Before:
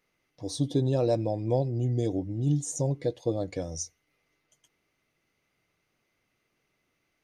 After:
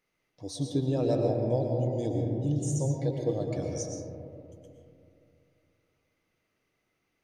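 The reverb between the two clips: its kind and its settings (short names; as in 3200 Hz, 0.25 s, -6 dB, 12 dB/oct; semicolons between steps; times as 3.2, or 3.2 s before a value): digital reverb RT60 2.7 s, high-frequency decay 0.25×, pre-delay 80 ms, DRR 1 dB; gain -4 dB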